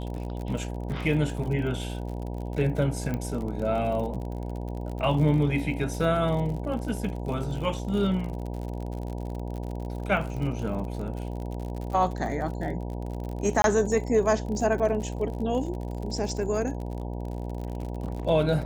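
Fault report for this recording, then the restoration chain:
mains buzz 60 Hz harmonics 16 −33 dBFS
surface crackle 50 per second −34 dBFS
0:03.14: click −18 dBFS
0:13.62–0:13.64: drop-out 22 ms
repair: click removal
hum removal 60 Hz, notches 16
repair the gap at 0:13.62, 22 ms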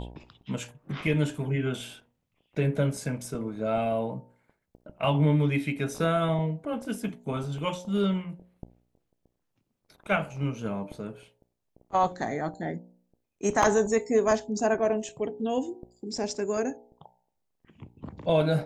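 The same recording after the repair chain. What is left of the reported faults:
none of them is left

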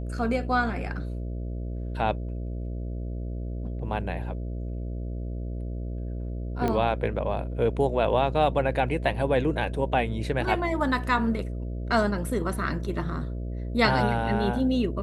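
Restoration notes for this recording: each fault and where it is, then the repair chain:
mains buzz 60 Hz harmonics 11 −32 dBFS
0:06.68: click −15 dBFS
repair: click removal
hum removal 60 Hz, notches 11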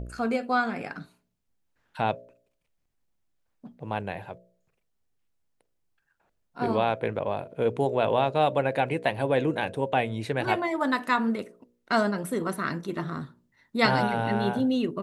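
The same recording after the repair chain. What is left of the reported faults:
none of them is left

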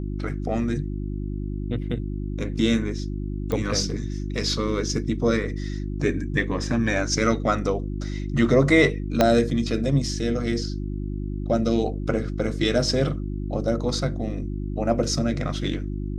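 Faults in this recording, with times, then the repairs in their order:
mains hum 50 Hz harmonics 7 −29 dBFS
0:03.52: click −14 dBFS
0:09.21: click −4 dBFS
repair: click removal
hum removal 50 Hz, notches 7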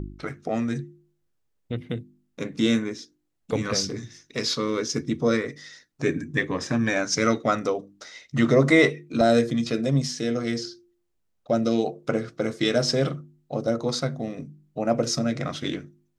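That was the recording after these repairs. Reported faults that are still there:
0:09.21: click

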